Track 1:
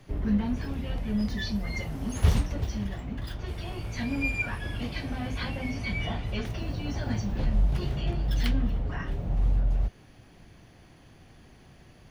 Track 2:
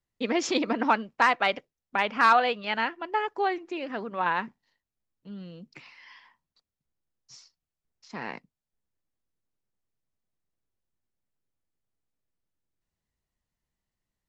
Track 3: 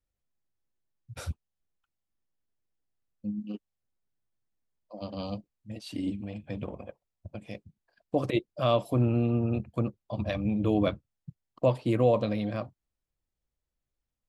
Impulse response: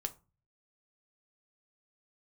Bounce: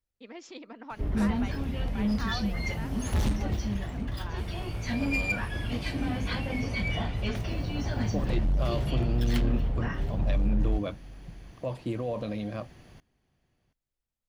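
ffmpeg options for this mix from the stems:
-filter_complex "[0:a]asoftclip=type=hard:threshold=0.0708,adelay=900,volume=1.12,asplit=2[s0][s1];[s1]volume=0.0841[s2];[1:a]volume=0.119[s3];[2:a]alimiter=limit=0.0944:level=0:latency=1:release=38,volume=0.708[s4];[s2]aecho=0:1:728:1[s5];[s0][s3][s4][s5]amix=inputs=4:normalize=0"

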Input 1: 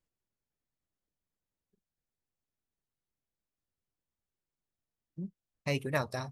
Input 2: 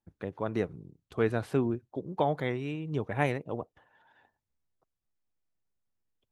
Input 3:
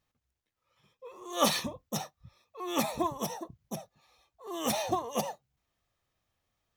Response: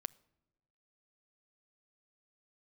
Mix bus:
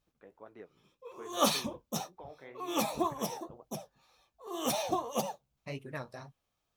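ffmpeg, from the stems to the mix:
-filter_complex "[0:a]highshelf=f=4400:g=-7,volume=0.596[s0];[1:a]bass=f=250:g=-12,treble=f=4000:g=-13,alimiter=limit=0.0841:level=0:latency=1:release=209,aeval=exprs='val(0)+0.000398*(sin(2*PI*50*n/s)+sin(2*PI*2*50*n/s)/2+sin(2*PI*3*50*n/s)/3+sin(2*PI*4*50*n/s)/4+sin(2*PI*5*50*n/s)/5)':c=same,volume=0.251[s1];[2:a]equalizer=f=1900:w=7.2:g=-9,volume=1.33,asplit=2[s2][s3];[s3]volume=0.0631[s4];[3:a]atrim=start_sample=2205[s5];[s4][s5]afir=irnorm=-1:irlink=0[s6];[s0][s1][s2][s6]amix=inputs=4:normalize=0,flanger=delay=6.6:depth=9.8:regen=-41:speed=1.9:shape=sinusoidal,equalizer=f=87:t=o:w=0.88:g=-5.5"

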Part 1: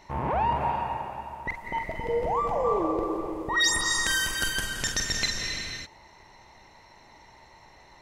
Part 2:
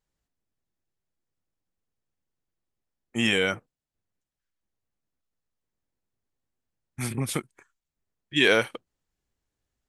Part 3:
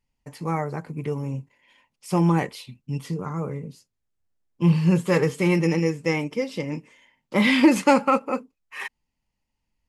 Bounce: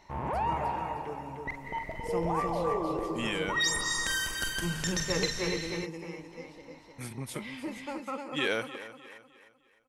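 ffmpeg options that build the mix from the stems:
-filter_complex "[0:a]volume=0.562[s0];[1:a]volume=0.316,asplit=2[s1][s2];[s2]volume=0.168[s3];[2:a]highpass=210,volume=0.596,afade=t=out:st=5.36:d=0.57:silence=0.298538,afade=t=in:st=7.97:d=0.24:silence=0.446684,asplit=2[s4][s5];[s5]volume=0.668[s6];[s3][s6]amix=inputs=2:normalize=0,aecho=0:1:305|610|915|1220|1525:1|0.38|0.144|0.0549|0.0209[s7];[s0][s1][s4][s7]amix=inputs=4:normalize=0"

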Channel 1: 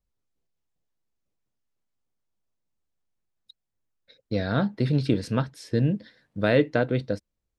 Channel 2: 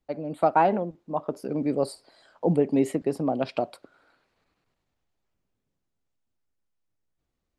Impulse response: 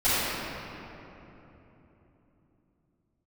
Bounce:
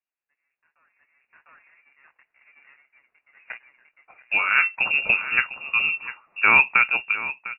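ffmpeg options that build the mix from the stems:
-filter_complex "[0:a]volume=1,asplit=3[s0][s1][s2];[s1]volume=0.224[s3];[1:a]alimiter=limit=0.15:level=0:latency=1:release=259,flanger=delay=19:depth=6.3:speed=1.3,aeval=exprs='abs(val(0))':c=same,adelay=200,volume=0.299,asplit=2[s4][s5];[s5]volume=0.106[s6];[s2]apad=whole_len=343311[s7];[s4][s7]sidechaingate=range=0.0631:threshold=0.00158:ratio=16:detection=peak[s8];[s3][s6]amix=inputs=2:normalize=0,aecho=0:1:702:1[s9];[s0][s8][s9]amix=inputs=3:normalize=0,highpass=f=730:p=1,dynaudnorm=f=220:g=11:m=5.01,lowpass=f=2500:t=q:w=0.5098,lowpass=f=2500:t=q:w=0.6013,lowpass=f=2500:t=q:w=0.9,lowpass=f=2500:t=q:w=2.563,afreqshift=-2900"

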